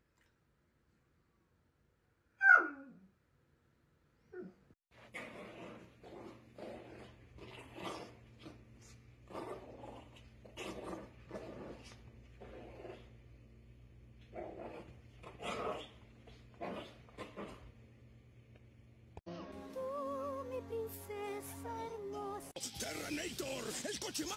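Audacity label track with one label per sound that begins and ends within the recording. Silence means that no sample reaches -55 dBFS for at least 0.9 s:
2.400000	2.980000	sound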